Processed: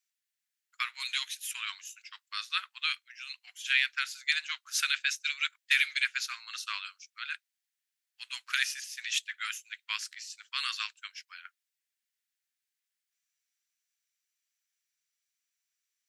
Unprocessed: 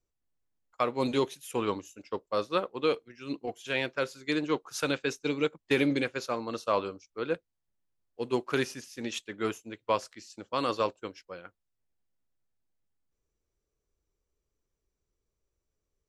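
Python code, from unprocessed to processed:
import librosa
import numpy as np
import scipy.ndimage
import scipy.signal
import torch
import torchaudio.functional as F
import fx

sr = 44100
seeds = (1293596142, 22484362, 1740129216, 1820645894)

y = scipy.signal.sosfilt(scipy.signal.butter(6, 1600.0, 'highpass', fs=sr, output='sos'), x)
y = y * 10.0 ** (7.0 / 20.0)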